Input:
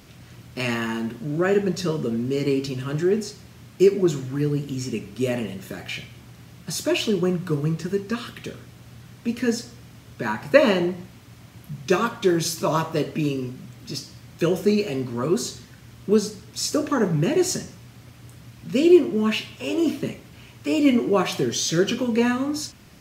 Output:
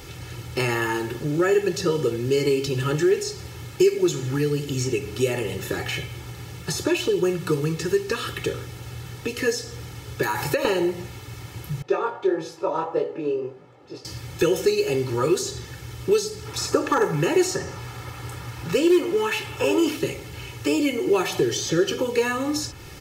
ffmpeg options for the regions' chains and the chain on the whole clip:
ffmpeg -i in.wav -filter_complex "[0:a]asettb=1/sr,asplit=3[link_01][link_02][link_03];[link_01]atrim=end=10.234[link_04];[link_02]atrim=start=10.23:end=10.65,asetpts=PTS-STARTPTS,afade=type=in:duration=0.004:curve=qsin,afade=type=out:start_time=0.416:duration=0.004:curve=qsin,aemphasis=mode=production:type=75kf,acompressor=threshold=-27dB:ratio=4:attack=3.2:release=140:knee=1:detection=peak[link_05];[link_03]atrim=start=10.646[link_06];[link_04][link_05]acrossfade=duration=0.004:curve1=hsin:curve2=qsin[link_07];[link_07][link_06]acrossfade=duration=0.004:curve1=qsin:curve2=hsin,asettb=1/sr,asplit=3[link_08][link_09][link_10];[link_08]atrim=end=11.824[link_11];[link_09]atrim=start=11.82:end=14.05,asetpts=PTS-STARTPTS,afade=type=in:duration=0.004:curve=qsin,afade=type=out:start_time=2.226:duration=0.004:curve=qsin,bandpass=frequency=650:width_type=q:width=1.5,flanger=delay=18.5:depth=6.2:speed=1.6[link_12];[link_10]atrim=start=14.046[link_13];[link_11][link_12]acrossfade=duration=0.004:curve1=hsin:curve2=qsin[link_14];[link_14][link_13]acrossfade=duration=0.004:curve1=qsin:curve2=hsin,asettb=1/sr,asplit=3[link_15][link_16][link_17];[link_15]atrim=end=16.454[link_18];[link_16]atrim=start=16.45:end=19.97,asetpts=PTS-STARTPTS,afade=type=in:duration=0.004:curve=qsin,afade=type=out:start_time=3.516:duration=0.004:curve=qsin,equalizer=frequency=1100:width_type=o:width=1.7:gain=8.5,asoftclip=type=hard:threshold=-9dB[link_19];[link_17]atrim=start=19.966[link_20];[link_18][link_19]acrossfade=duration=0.004:curve1=hsin:curve2=qsin[link_21];[link_21][link_20]acrossfade=duration=0.004:curve1=qsin:curve2=hsin,acrossover=split=1800|6800[link_22][link_23][link_24];[link_22]acompressor=threshold=-29dB:ratio=4[link_25];[link_23]acompressor=threshold=-42dB:ratio=4[link_26];[link_24]acompressor=threshold=-48dB:ratio=4[link_27];[link_25][link_26][link_27]amix=inputs=3:normalize=0,aecho=1:1:2.3:0.86,volume=7dB" out.wav

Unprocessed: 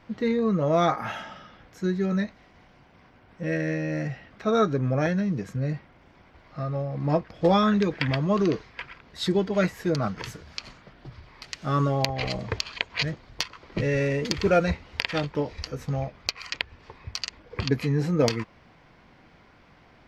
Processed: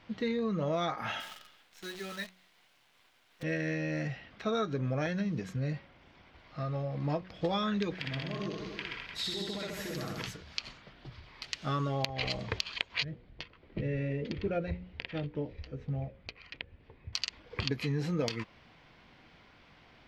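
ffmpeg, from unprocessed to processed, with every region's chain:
ffmpeg -i in.wav -filter_complex "[0:a]asettb=1/sr,asplit=3[link_01][link_02][link_03];[link_01]atrim=end=1.204[link_04];[link_02]atrim=start=1.2:end=3.43,asetpts=PTS-STARTPTS,afade=type=in:duration=0.004:curve=qsin,afade=type=out:start_time=2.226:duration=0.004:curve=qsin,highpass=frequency=1100:poles=1,acrusher=bits=8:dc=4:mix=0:aa=0.000001[link_05];[link_03]atrim=start=3.426[link_06];[link_04][link_05]acrossfade=duration=0.004:curve1=hsin:curve2=qsin[link_07];[link_07][link_06]acrossfade=duration=0.004:curve1=qsin:curve2=hsin,asettb=1/sr,asplit=3[link_08][link_09][link_10];[link_08]atrim=end=7.954[link_11];[link_09]atrim=start=7.95:end=10.26,asetpts=PTS-STARTPTS,afade=type=in:duration=0.004:curve=qsin,afade=type=out:start_time=2.306:duration=0.004:curve=qsin,highshelf=frequency=7100:gain=7,acompressor=threshold=-33dB:ratio=8:attack=3.2:release=140:knee=1:detection=peak,aecho=1:1:60|129|208.4|299.6|404.5:0.794|0.631|0.501|0.398|0.316,atrim=end_sample=101871[link_12];[link_10]atrim=start=10.256[link_13];[link_11][link_12]acrossfade=duration=0.004:curve1=hsin:curve2=qsin[link_14];[link_14][link_13]acrossfade=duration=0.004:curve1=qsin:curve2=hsin,asettb=1/sr,asplit=3[link_15][link_16][link_17];[link_15]atrim=end=13.044[link_18];[link_16]atrim=start=13.04:end=17.13,asetpts=PTS-STARTPTS,afade=type=in:duration=0.004:curve=qsin,afade=type=out:start_time=4.086:duration=0.004:curve=qsin,lowpass=1600,equalizer=frequency=1100:width=0.93:gain=-13,bandreject=frequency=60:width_type=h:width=6,bandreject=frequency=120:width_type=h:width=6,bandreject=frequency=180:width_type=h:width=6,bandreject=frequency=240:width_type=h:width=6,bandreject=frequency=300:width_type=h:width=6,bandreject=frequency=360:width_type=h:width=6,bandreject=frequency=420:width_type=h:width=6,bandreject=frequency=480:width_type=h:width=6,bandreject=frequency=540:width_type=h:width=6[link_19];[link_17]atrim=start=17.126[link_20];[link_18][link_19]acrossfade=duration=0.004:curve1=hsin:curve2=qsin[link_21];[link_21][link_20]acrossfade=duration=0.004:curve1=qsin:curve2=hsin,equalizer=frequency=3300:width=1.1:gain=7.5,bandreject=frequency=184.7:width_type=h:width=4,bandreject=frequency=369.4:width_type=h:width=4,bandreject=frequency=554.1:width_type=h:width=4,acompressor=threshold=-23dB:ratio=6,volume=-5dB" out.wav

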